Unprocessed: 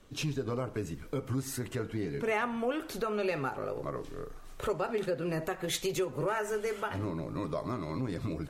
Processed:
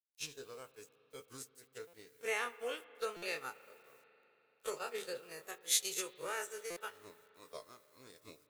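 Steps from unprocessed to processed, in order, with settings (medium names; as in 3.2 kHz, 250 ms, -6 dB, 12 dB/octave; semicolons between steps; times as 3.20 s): every event in the spectrogram widened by 60 ms; gate -28 dBFS, range -49 dB; low-pass 11 kHz 12 dB/octave; peaking EQ 460 Hz +13 dB 0.26 oct; word length cut 12-bit, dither none; pre-emphasis filter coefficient 0.97; spring tank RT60 3.7 s, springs 38/54 ms, chirp 35 ms, DRR 16.5 dB; buffer glitch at 1.87/3.16/6.70 s, samples 256, times 10; trim +4 dB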